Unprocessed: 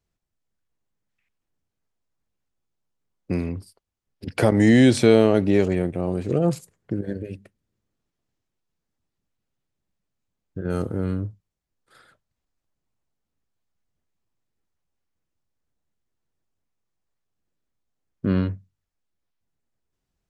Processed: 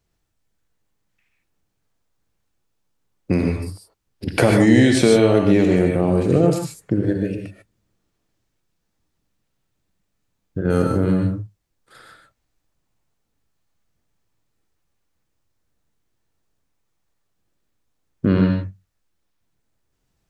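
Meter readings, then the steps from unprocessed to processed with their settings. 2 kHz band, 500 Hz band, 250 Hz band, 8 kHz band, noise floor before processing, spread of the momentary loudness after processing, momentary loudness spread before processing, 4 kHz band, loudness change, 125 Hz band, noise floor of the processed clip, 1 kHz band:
+4.5 dB, +3.5 dB, +4.0 dB, +5.5 dB, -82 dBFS, 15 LU, 20 LU, +4.0 dB, +3.0 dB, +4.5 dB, -74 dBFS, +4.5 dB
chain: compressor 4:1, threshold -19 dBFS, peak gain reduction 8.5 dB; non-linear reverb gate 0.17 s rising, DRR 2 dB; gain +7 dB

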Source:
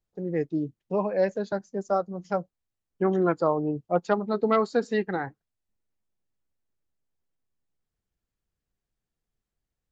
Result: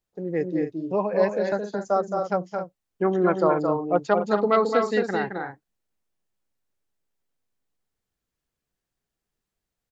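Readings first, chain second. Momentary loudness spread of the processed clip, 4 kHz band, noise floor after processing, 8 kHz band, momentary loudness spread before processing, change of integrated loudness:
10 LU, +4.5 dB, -85 dBFS, n/a, 8 LU, +3.0 dB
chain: low shelf 180 Hz -7.5 dB; on a send: loudspeakers at several distances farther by 75 m -5 dB, 90 m -10 dB; on the sum: gain +3 dB

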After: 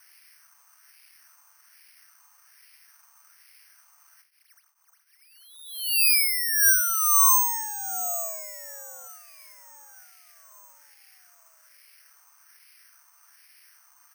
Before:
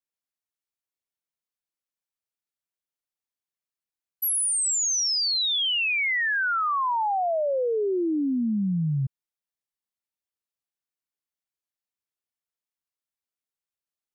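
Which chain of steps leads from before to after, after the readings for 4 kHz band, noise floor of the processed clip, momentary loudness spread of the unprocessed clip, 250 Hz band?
-6.0 dB, -63 dBFS, 4 LU, under -40 dB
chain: zero-crossing step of -40.5 dBFS; feedback echo 1.075 s, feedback 51%, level -22.5 dB; wah 1.2 Hz 740–1800 Hz, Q 2.1; mistuned SSB +380 Hz 190–2700 Hz; careless resampling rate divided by 6×, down none, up zero stuff

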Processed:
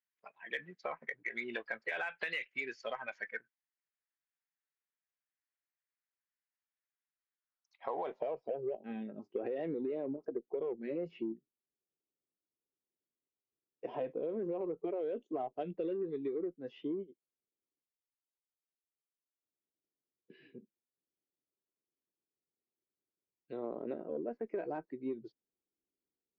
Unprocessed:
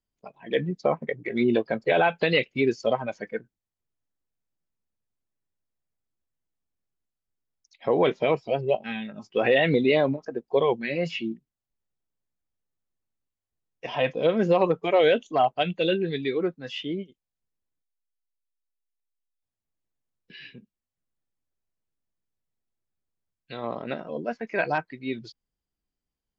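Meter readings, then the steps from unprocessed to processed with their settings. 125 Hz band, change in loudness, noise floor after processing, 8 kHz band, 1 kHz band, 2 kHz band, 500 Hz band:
-21.0 dB, -14.5 dB, under -85 dBFS, n/a, -16.5 dB, -11.5 dB, -14.5 dB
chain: band-pass sweep 1800 Hz -> 370 Hz, 7.3–8.78; limiter -22 dBFS, peak gain reduction 7 dB; added harmonics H 4 -43 dB, 5 -35 dB, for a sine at -22 dBFS; compressor, threshold -36 dBFS, peak gain reduction 10.5 dB; gain +1.5 dB

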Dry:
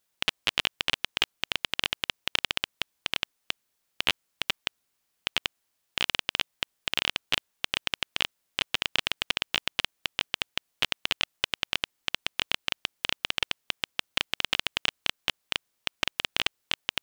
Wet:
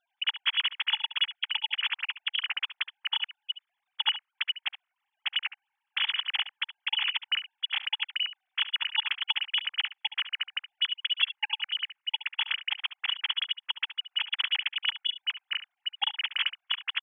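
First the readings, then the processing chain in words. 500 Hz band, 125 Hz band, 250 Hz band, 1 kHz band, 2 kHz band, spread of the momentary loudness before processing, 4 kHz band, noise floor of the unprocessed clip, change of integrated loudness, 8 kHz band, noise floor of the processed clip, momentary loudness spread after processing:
under -25 dB, under -40 dB, under -35 dB, -3.5 dB, -1.0 dB, 6 LU, +1.5 dB, -77 dBFS, +0.5 dB, under -40 dB, -85 dBFS, 6 LU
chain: sine-wave speech; echo 70 ms -13.5 dB

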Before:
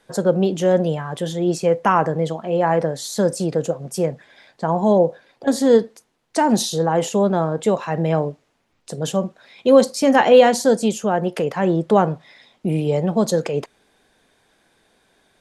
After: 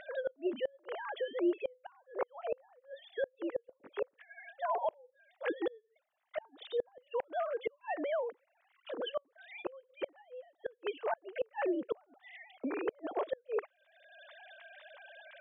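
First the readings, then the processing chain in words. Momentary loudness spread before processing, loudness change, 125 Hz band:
11 LU, -19.5 dB, under -40 dB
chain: sine-wave speech; tilt +3.5 dB/oct; upward compressor, threshold -27 dBFS; flipped gate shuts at -17 dBFS, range -35 dB; air absorption 410 m; gain -4.5 dB

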